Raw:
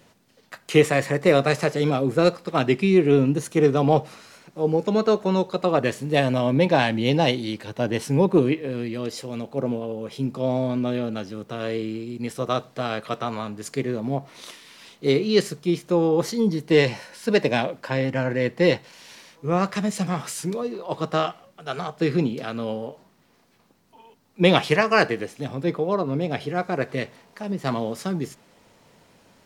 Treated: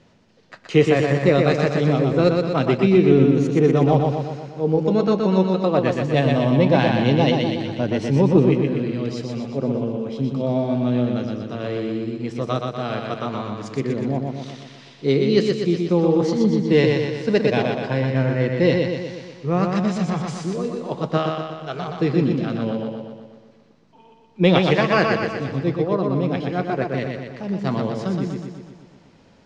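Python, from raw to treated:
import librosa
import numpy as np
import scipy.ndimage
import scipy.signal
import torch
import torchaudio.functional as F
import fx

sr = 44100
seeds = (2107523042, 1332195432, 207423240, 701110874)

p1 = scipy.signal.sosfilt(scipy.signal.butter(4, 6300.0, 'lowpass', fs=sr, output='sos'), x)
p2 = fx.low_shelf(p1, sr, hz=400.0, db=6.5)
p3 = p2 + fx.echo_feedback(p2, sr, ms=122, feedback_pct=58, wet_db=-4.0, dry=0)
y = F.gain(torch.from_numpy(p3), -2.5).numpy()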